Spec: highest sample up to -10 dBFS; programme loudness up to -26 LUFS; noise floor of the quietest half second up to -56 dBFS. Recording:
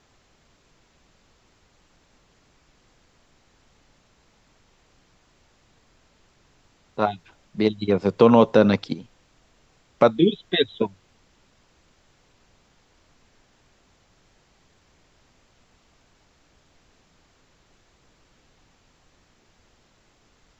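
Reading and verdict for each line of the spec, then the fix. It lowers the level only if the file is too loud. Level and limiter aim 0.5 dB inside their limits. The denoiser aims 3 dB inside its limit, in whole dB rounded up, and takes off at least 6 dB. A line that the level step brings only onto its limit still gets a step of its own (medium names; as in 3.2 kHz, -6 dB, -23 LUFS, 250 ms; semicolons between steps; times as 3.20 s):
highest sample -3.0 dBFS: fail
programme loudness -21.0 LUFS: fail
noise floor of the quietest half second -61 dBFS: pass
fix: trim -5.5 dB; peak limiter -10.5 dBFS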